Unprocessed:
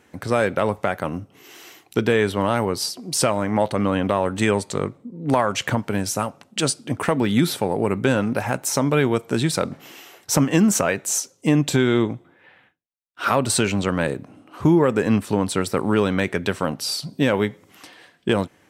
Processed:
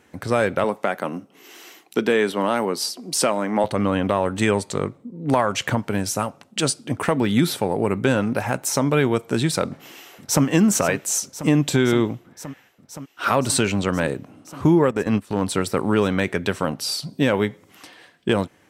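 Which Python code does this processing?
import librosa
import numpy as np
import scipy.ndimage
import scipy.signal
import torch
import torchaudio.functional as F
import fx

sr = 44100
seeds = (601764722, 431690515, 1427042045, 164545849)

y = fx.highpass(x, sr, hz=180.0, slope=24, at=(0.64, 3.64))
y = fx.echo_throw(y, sr, start_s=9.66, length_s=0.79, ms=520, feedback_pct=85, wet_db=-12.5)
y = fx.transient(y, sr, attack_db=-6, sustain_db=-12, at=(14.88, 15.42))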